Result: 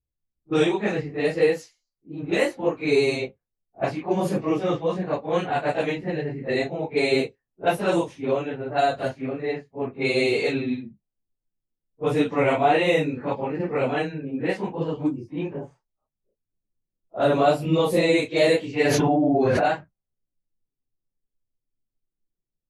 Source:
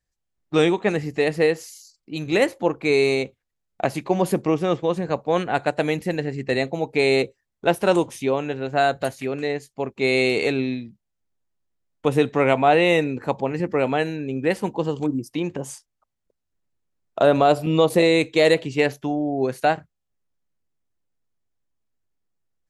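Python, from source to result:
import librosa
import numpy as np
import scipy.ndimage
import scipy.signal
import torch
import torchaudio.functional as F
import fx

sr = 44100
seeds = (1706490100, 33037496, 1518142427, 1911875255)

y = fx.phase_scramble(x, sr, seeds[0], window_ms=100)
y = fx.env_lowpass(y, sr, base_hz=430.0, full_db=-15.5)
y = fx.env_flatten(y, sr, amount_pct=100, at=(18.85, 19.68))
y = F.gain(torch.from_numpy(y), -2.5).numpy()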